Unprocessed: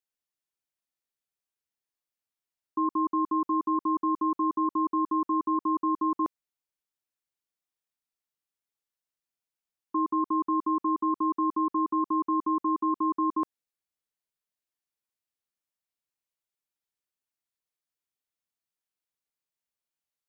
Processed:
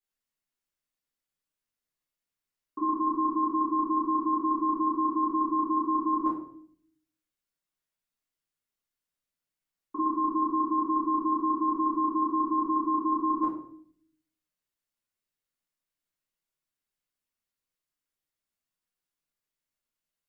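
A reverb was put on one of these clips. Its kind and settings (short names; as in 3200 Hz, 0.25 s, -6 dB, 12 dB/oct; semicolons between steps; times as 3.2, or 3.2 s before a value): shoebox room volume 82 m³, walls mixed, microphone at 2.3 m; gain -8 dB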